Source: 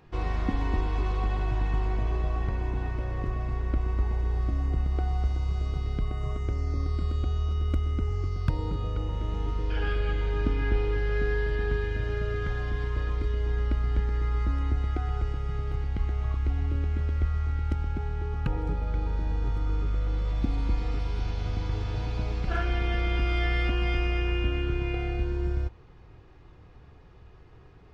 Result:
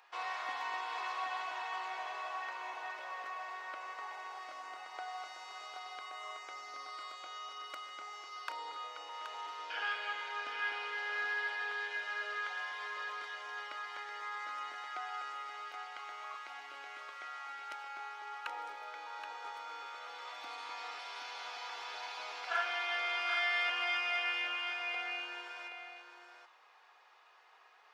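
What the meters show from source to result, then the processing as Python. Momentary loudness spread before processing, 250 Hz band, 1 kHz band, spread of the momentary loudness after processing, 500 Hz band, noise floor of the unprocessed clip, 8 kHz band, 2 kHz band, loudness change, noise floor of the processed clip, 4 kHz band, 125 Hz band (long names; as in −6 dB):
4 LU, below −25 dB, 0.0 dB, 12 LU, −15.0 dB, −51 dBFS, can't be measured, +1.5 dB, −9.5 dB, −63 dBFS, +1.5 dB, below −40 dB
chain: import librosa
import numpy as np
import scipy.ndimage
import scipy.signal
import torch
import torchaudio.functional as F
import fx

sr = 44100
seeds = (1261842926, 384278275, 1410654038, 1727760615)

y = scipy.signal.sosfilt(scipy.signal.butter(4, 780.0, 'highpass', fs=sr, output='sos'), x)
y = y + 10.0 ** (-7.5 / 20.0) * np.pad(y, (int(775 * sr / 1000.0), 0))[:len(y)]
y = y * 10.0 ** (1.0 / 20.0)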